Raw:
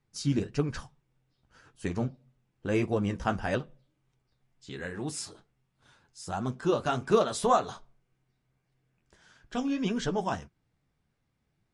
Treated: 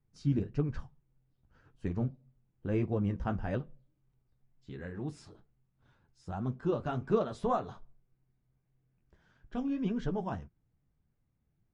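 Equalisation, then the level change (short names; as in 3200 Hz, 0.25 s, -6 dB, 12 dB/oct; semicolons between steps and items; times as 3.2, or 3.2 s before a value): RIAA curve playback; low shelf 130 Hz -7 dB; high shelf 8600 Hz -7 dB; -8.0 dB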